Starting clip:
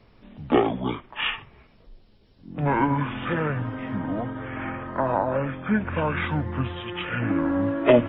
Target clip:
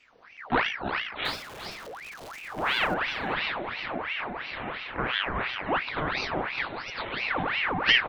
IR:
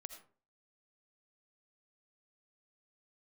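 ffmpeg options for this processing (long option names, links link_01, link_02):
-filter_complex "[0:a]asettb=1/sr,asplit=3[link_01][link_02][link_03];[link_01]atrim=end=1.254[link_04];[link_02]atrim=start=1.25:end=2.94,asetpts=PTS-STARTPTS,afade=type=in:duration=0.004:curve=qsin,afade=type=out:start_time=1.686:duration=0.004:curve=qsin,aeval=exprs='val(0)+0.5*0.0224*sgn(val(0))':channel_layout=same[link_05];[link_03]atrim=start=2.936[link_06];[link_04][link_05]acrossfade=duration=0.004:curve1=hsin:curve2=qsin[link_07];[link_07][link_06]acrossfade=duration=0.004:curve1=qsin:curve2=hsin,asplit=2[link_08][link_09];[link_09]adelay=402.3,volume=-7dB,highshelf=frequency=4000:gain=-9.05[link_10];[link_08][link_10]amix=inputs=2:normalize=0,aeval=exprs='val(0)*sin(2*PI*1500*n/s+1500*0.7/2.9*sin(2*PI*2.9*n/s))':channel_layout=same,volume=-2.5dB"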